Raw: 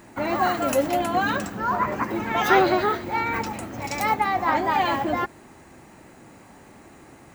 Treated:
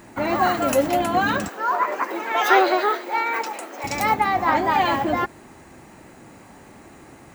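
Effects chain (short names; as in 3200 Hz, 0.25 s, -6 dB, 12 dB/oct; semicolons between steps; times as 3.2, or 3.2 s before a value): 1.48–3.84 HPF 370 Hz 24 dB/oct; gain +2.5 dB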